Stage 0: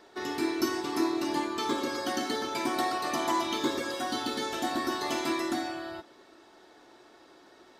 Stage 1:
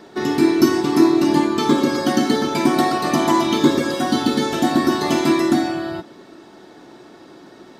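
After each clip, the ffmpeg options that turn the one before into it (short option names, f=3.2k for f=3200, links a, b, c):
-af "equalizer=f=170:w=0.82:g=14.5,volume=8.5dB"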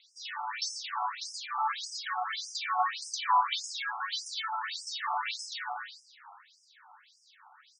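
-filter_complex "[0:a]asplit=2[a][b];[b]asplit=5[c][d][e][f][g];[c]adelay=144,afreqshift=120,volume=-12.5dB[h];[d]adelay=288,afreqshift=240,volume=-18.3dB[i];[e]adelay=432,afreqshift=360,volume=-24.2dB[j];[f]adelay=576,afreqshift=480,volume=-30dB[k];[g]adelay=720,afreqshift=600,volume=-35.9dB[l];[h][i][j][k][l]amix=inputs=5:normalize=0[m];[a][m]amix=inputs=2:normalize=0,afftfilt=real='re*between(b*sr/1024,970*pow(7100/970,0.5+0.5*sin(2*PI*1.7*pts/sr))/1.41,970*pow(7100/970,0.5+0.5*sin(2*PI*1.7*pts/sr))*1.41)':imag='im*between(b*sr/1024,970*pow(7100/970,0.5+0.5*sin(2*PI*1.7*pts/sr))/1.41,970*pow(7100/970,0.5+0.5*sin(2*PI*1.7*pts/sr))*1.41)':win_size=1024:overlap=0.75,volume=-3.5dB"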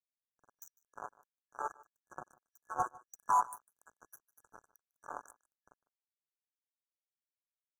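-af "acrusher=bits=3:mix=0:aa=0.5,aecho=1:1:151:0.0794,afftfilt=real='re*(1-between(b*sr/4096,1700,5800))':imag='im*(1-between(b*sr/4096,1700,5800))':win_size=4096:overlap=0.75,volume=-4.5dB"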